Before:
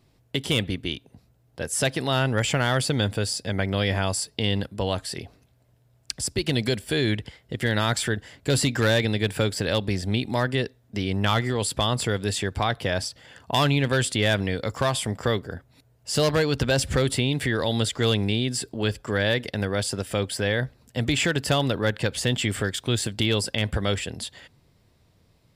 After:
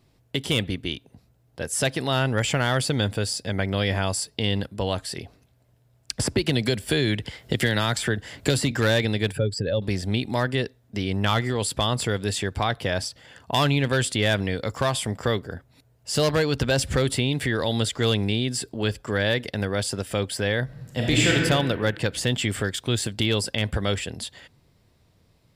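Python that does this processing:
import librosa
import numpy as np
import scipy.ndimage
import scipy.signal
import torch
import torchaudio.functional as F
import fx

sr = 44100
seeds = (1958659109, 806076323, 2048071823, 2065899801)

y = fx.band_squash(x, sr, depth_pct=100, at=(6.19, 8.71))
y = fx.spec_expand(y, sr, power=1.9, at=(9.32, 9.82))
y = fx.reverb_throw(y, sr, start_s=20.64, length_s=0.69, rt60_s=1.6, drr_db=-2.5)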